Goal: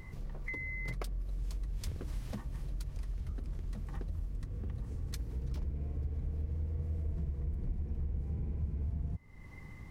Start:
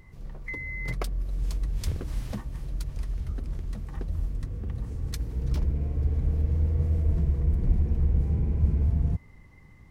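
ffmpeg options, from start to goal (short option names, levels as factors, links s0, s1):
-af "acompressor=threshold=0.00708:ratio=3,volume=1.58"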